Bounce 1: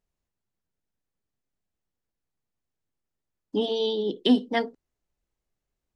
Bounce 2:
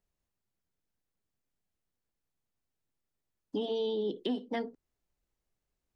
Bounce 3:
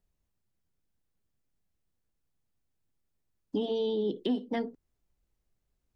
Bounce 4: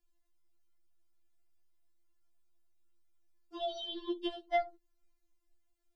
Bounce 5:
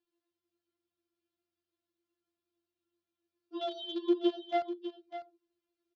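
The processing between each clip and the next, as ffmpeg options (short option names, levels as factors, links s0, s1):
-filter_complex "[0:a]acrossover=split=440|2800[s0][s1][s2];[s0]acompressor=threshold=0.0282:ratio=4[s3];[s1]acompressor=threshold=0.0178:ratio=4[s4];[s2]acompressor=threshold=0.00316:ratio=4[s5];[s3][s4][s5]amix=inputs=3:normalize=0,asplit=2[s6][s7];[s7]alimiter=level_in=1.12:limit=0.0631:level=0:latency=1,volume=0.891,volume=1.12[s8];[s6][s8]amix=inputs=2:normalize=0,volume=0.398"
-af "lowshelf=f=250:g=8"
-filter_complex "[0:a]acrossover=split=480|670[s0][s1][s2];[s0]asoftclip=type=tanh:threshold=0.0251[s3];[s3][s1][s2]amix=inputs=3:normalize=0,afftfilt=real='re*4*eq(mod(b,16),0)':imag='im*4*eq(mod(b,16),0)':win_size=2048:overlap=0.75,volume=1.19"
-filter_complex "[0:a]asplit=2[s0][s1];[s1]acrusher=bits=3:dc=4:mix=0:aa=0.000001,volume=0.398[s2];[s0][s2]amix=inputs=2:normalize=0,highpass=140,equalizer=f=350:t=q:w=4:g=8,equalizer=f=820:t=q:w=4:g=-6,equalizer=f=2000:t=q:w=4:g=-8,lowpass=f=4500:w=0.5412,lowpass=f=4500:w=1.3066,aecho=1:1:600:0.266"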